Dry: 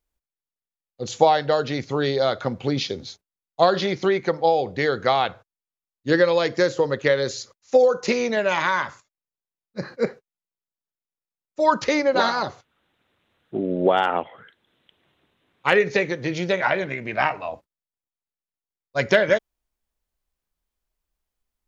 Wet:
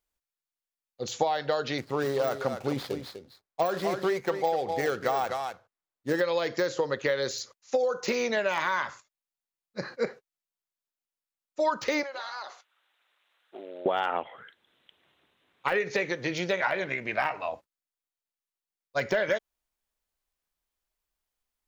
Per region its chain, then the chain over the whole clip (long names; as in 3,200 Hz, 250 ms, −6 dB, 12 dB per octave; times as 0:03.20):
0:01.78–0:06.21: running median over 15 samples + single-tap delay 248 ms −10 dB
0:12.03–0:13.86: high-pass filter 780 Hz + downward compressor 12 to 1, threshold −32 dBFS
whole clip: de-essing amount 75%; low-shelf EQ 370 Hz −9 dB; downward compressor 5 to 1, threshold −23 dBFS